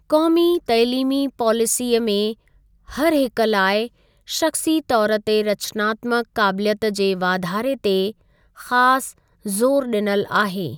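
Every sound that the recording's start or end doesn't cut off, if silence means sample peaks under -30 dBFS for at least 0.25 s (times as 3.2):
2.89–3.87
4.29–8.11
8.6–9.1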